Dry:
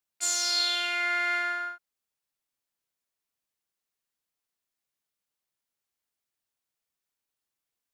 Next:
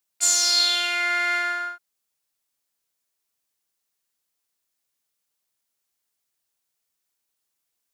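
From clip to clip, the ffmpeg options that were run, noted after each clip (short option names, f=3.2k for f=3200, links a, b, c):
-af "bass=f=250:g=-2,treble=f=4k:g=5,volume=4dB"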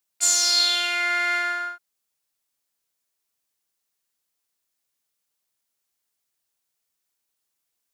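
-af anull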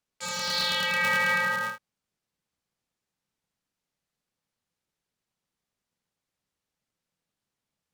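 -filter_complex "[0:a]acrossover=split=4000[a][b];[b]acompressor=threshold=-32dB:ratio=4:attack=1:release=60[c];[a][c]amix=inputs=2:normalize=0,aemphasis=mode=reproduction:type=bsi,aeval=exprs='val(0)*sgn(sin(2*PI*170*n/s))':c=same"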